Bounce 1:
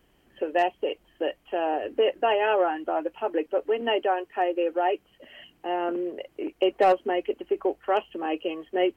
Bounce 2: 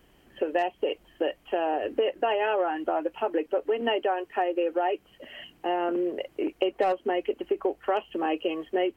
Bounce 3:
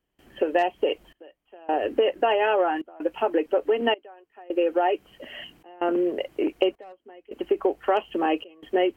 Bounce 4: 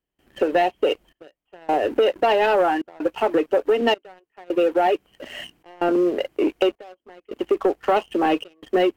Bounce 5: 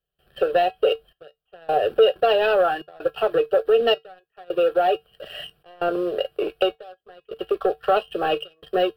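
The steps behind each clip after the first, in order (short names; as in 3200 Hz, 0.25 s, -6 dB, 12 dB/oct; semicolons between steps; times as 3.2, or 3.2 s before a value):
compressor 4:1, threshold -27 dBFS, peak gain reduction 10 dB; gain +4 dB
step gate ".xxxxx...xxxxxx" 80 bpm -24 dB; gain +4 dB
sample leveller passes 2; gain -2.5 dB
fixed phaser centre 1400 Hz, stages 8; resonator 150 Hz, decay 0.15 s, harmonics odd, mix 60%; gain +8 dB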